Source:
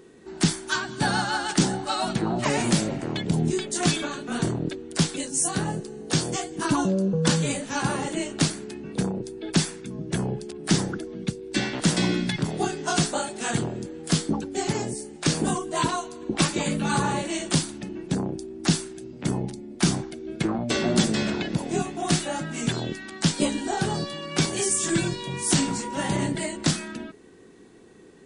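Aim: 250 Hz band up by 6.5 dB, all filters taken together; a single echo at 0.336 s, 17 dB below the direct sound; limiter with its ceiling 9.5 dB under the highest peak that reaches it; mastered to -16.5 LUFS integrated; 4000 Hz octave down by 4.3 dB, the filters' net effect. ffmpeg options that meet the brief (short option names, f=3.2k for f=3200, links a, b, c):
-af "equalizer=f=250:t=o:g=9,equalizer=f=4k:t=o:g=-5.5,alimiter=limit=-12dB:level=0:latency=1,aecho=1:1:336:0.141,volume=8dB"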